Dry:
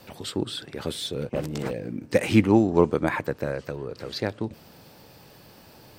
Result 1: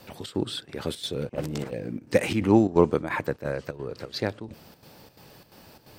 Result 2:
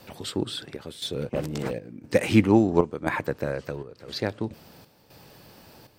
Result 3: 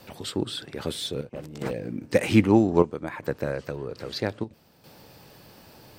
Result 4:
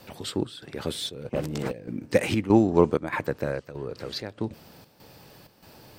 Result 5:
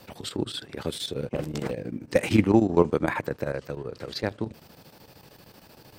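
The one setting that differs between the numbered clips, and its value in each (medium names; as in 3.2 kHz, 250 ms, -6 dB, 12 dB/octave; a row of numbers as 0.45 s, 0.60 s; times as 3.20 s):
square tremolo, rate: 2.9 Hz, 0.98 Hz, 0.62 Hz, 1.6 Hz, 13 Hz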